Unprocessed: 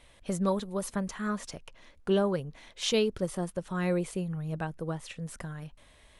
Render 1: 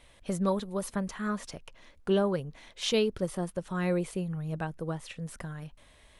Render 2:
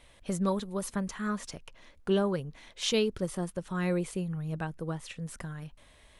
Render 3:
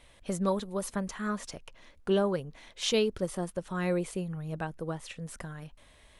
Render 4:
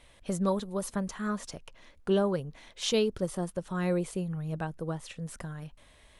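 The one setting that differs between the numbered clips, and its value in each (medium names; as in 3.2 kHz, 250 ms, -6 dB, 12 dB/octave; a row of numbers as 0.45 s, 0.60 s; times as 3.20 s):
dynamic bell, frequency: 7.1 kHz, 630 Hz, 140 Hz, 2.2 kHz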